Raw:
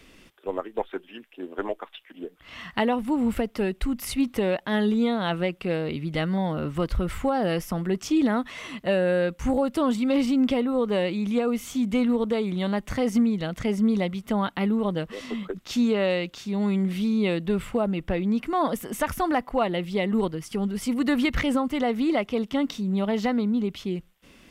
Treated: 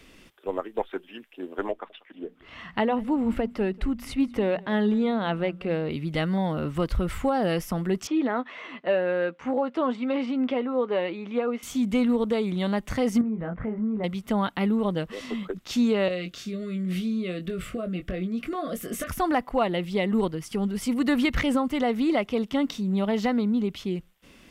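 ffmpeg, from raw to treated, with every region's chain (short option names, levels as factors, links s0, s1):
-filter_complex "[0:a]asettb=1/sr,asplit=3[s0][s1][s2];[s0]atrim=end=1.714[s3];[s1]atrim=start=1.71:end=5.91,asetpts=PTS-STARTPTS,afade=t=in:d=0.004:c=qsin,afade=t=out:st=4.196:d=0.004:c=qsin,lowpass=f=2400:p=1,bandreject=f=60:t=h:w=6,bandreject=f=120:t=h:w=6,bandreject=f=180:t=h:w=6,bandreject=f=240:t=h:w=6,aecho=1:1:189:0.0668,atrim=end_sample=185220[s4];[s2]atrim=start=5.906[s5];[s3][s4]acrossfade=d=0.004:c1=hsin:c2=qsin[s6];[s6][s5]acrossfade=d=0.004:c1=qsin:c2=hsin,asettb=1/sr,asplit=3[s7][s8][s9];[s7]atrim=end=8.074[s10];[s8]atrim=start=8.07:end=11.63,asetpts=PTS-STARTPTS,afade=t=in:d=0.004:c=qsin,afade=t=out:st=3.556:d=0.004:c=qsin,highpass=330,lowpass=2500,asplit=2[s11][s12];[s12]adelay=12,volume=0.251[s13];[s11][s13]amix=inputs=2:normalize=0,atrim=end_sample=156996[s14];[s9]atrim=start=11.626[s15];[s10][s14]acrossfade=d=0.004:c1=hsin:c2=qsin[s16];[s16][s15]acrossfade=d=0.004:c1=qsin:c2=hsin,asettb=1/sr,asplit=3[s17][s18][s19];[s17]atrim=end=13.214[s20];[s18]atrim=start=13.21:end=14.04,asetpts=PTS-STARTPTS,afade=t=in:d=0.004:c=qsin,afade=t=out:st=0.826:d=0.004:c=qsin,lowpass=f=1700:w=0.5412,lowpass=f=1700:w=1.3066,asplit=2[s21][s22];[s22]adelay=23,volume=0.562[s23];[s21][s23]amix=inputs=2:normalize=0,atrim=end_sample=36603,acompressor=threshold=0.0398:ratio=2.5:attack=3.2:release=140:knee=1:detection=peak[s24];[s19]atrim=start=14.036[s25];[s20][s24]acrossfade=d=0.004:c1=hsin:c2=qsin[s26];[s26][s25]acrossfade=d=0.004:c1=qsin:c2=hsin,asettb=1/sr,asplit=3[s27][s28][s29];[s27]atrim=end=16.084[s30];[s28]atrim=start=16.08:end=19.11,asetpts=PTS-STARTPTS,afade=t=in:d=0.004:c=qsin,afade=t=out:st=3.026:d=0.004:c=qsin,acompressor=threshold=0.0501:ratio=10:attack=3.2:release=140:knee=1:detection=peak,asuperstop=centerf=890:order=20:qfactor=2.6,asplit=2[s31][s32];[s32]adelay=22,volume=0.422[s33];[s31][s33]amix=inputs=2:normalize=0,atrim=end_sample=133623[s34];[s29]atrim=start=19.106[s35];[s30][s34]acrossfade=d=0.004:c1=hsin:c2=qsin[s36];[s36][s35]acrossfade=d=0.004:c1=qsin:c2=hsin"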